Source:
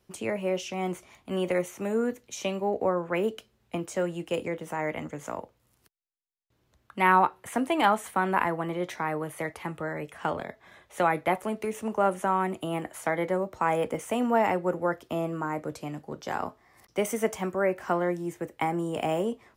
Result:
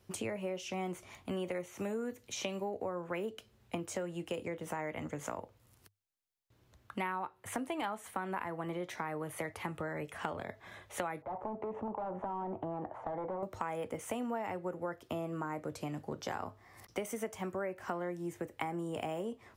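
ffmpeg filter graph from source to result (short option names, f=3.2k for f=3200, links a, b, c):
-filter_complex "[0:a]asettb=1/sr,asplit=3[a][b][c];[a]atrim=end=1.634[d];[b]atrim=start=1.63:end=3.26,asetpts=PTS-STARTPTS,afade=t=in:d=0.004:c=qsin,afade=t=out:st=1.626:d=0.004:c=qsin,acrossover=split=5100[e][f];[f]acompressor=threshold=-54dB:ratio=4:attack=1:release=60[g];[e][g]amix=inputs=2:normalize=0,highshelf=f=4.8k:g=6[h];[c]atrim=start=3.256[i];[d][h]acrossfade=d=0.004:c1=hsin:c2=qsin[j];[j][i]acrossfade=d=0.004:c1=qsin:c2=hsin,asettb=1/sr,asplit=3[k][l][m];[k]atrim=end=11.224[n];[l]atrim=start=11.22:end=13.43,asetpts=PTS-STARTPTS,afade=t=in:d=0.004:c=qsin,afade=t=out:st=2.206:d=0.004:c=qsin,volume=30dB,asoftclip=hard,volume=-30dB,lowpass=f=870:t=q:w=2.7,acompressor=threshold=-35dB:ratio=2.5:attack=3.2:release=140:knee=1:detection=peak[o];[m]atrim=start=13.426[p];[n][o]acrossfade=d=0.004:c1=hsin:c2=qsin[q];[q][p]acrossfade=d=0.004:c1=qsin:c2=hsin,equalizer=f=100:w=5.7:g=11.5,acompressor=threshold=-37dB:ratio=6,volume=1.5dB"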